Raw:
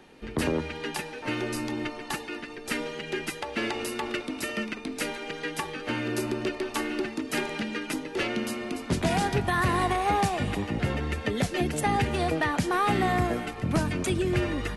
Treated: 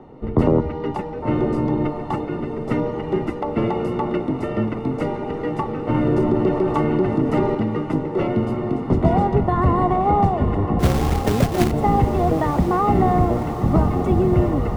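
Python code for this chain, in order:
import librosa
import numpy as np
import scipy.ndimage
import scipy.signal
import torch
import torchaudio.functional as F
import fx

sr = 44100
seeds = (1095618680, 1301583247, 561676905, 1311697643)

p1 = fx.octave_divider(x, sr, octaves=1, level_db=-3.0)
p2 = fx.rider(p1, sr, range_db=10, speed_s=2.0)
p3 = p1 + (p2 * librosa.db_to_amplitude(-3.0))
p4 = scipy.signal.savgol_filter(p3, 65, 4, mode='constant')
p5 = fx.quant_companded(p4, sr, bits=4, at=(10.79, 11.7), fade=0.02)
p6 = p5 + fx.echo_diffused(p5, sr, ms=1038, feedback_pct=67, wet_db=-11.0, dry=0)
p7 = fx.env_flatten(p6, sr, amount_pct=50, at=(5.94, 7.55))
y = p7 * librosa.db_to_amplitude(4.0)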